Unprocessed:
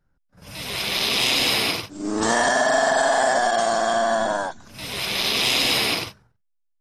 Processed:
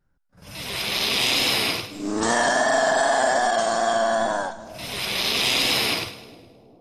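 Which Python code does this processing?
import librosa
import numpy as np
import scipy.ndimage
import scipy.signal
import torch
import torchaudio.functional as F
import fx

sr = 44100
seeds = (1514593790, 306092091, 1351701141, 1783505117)

y = fx.echo_split(x, sr, split_hz=650.0, low_ms=405, high_ms=104, feedback_pct=52, wet_db=-15)
y = fx.wow_flutter(y, sr, seeds[0], rate_hz=2.1, depth_cents=24.0)
y = y * 10.0 ** (-1.0 / 20.0)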